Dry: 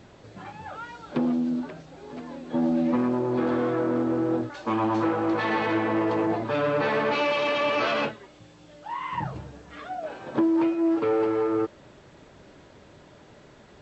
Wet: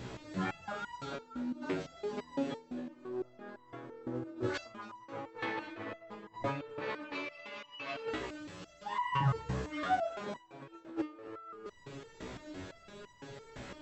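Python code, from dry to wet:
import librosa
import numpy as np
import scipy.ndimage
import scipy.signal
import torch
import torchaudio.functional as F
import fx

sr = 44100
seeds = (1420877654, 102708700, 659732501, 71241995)

y = fx.peak_eq(x, sr, hz=750.0, db=-4.5, octaves=0.71)
y = fx.over_compress(y, sr, threshold_db=-32.0, ratio=-0.5)
y = fx.echo_feedback(y, sr, ms=269, feedback_pct=42, wet_db=-16)
y = fx.resonator_held(y, sr, hz=5.9, low_hz=63.0, high_hz=990.0)
y = F.gain(torch.from_numpy(y), 7.5).numpy()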